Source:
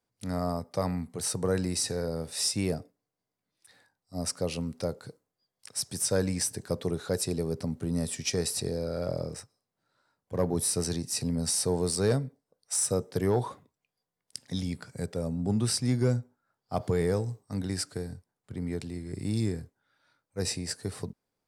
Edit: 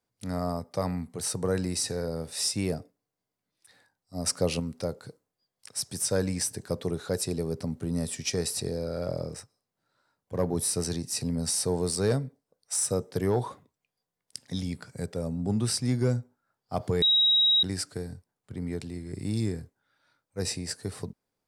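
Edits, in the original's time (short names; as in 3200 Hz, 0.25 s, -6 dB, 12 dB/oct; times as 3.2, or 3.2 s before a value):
4.26–4.6 gain +4.5 dB
17.02–17.63 bleep 3820 Hz -18.5 dBFS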